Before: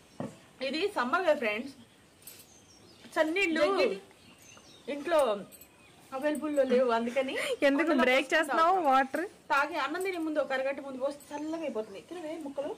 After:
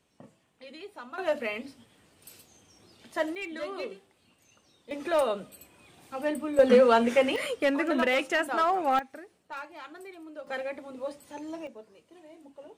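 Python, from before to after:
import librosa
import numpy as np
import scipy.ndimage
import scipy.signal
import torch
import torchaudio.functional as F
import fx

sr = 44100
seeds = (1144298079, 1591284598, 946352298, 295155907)

y = fx.gain(x, sr, db=fx.steps((0.0, -13.5), (1.18, -2.0), (3.35, -9.5), (4.91, 0.5), (6.59, 7.0), (7.36, -0.5), (8.99, -12.5), (10.47, -3.0), (11.67, -12.5)))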